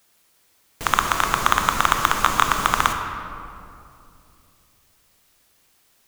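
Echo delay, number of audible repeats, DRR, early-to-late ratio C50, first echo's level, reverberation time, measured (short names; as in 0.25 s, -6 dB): none, none, 4.5 dB, 5.5 dB, none, 2.6 s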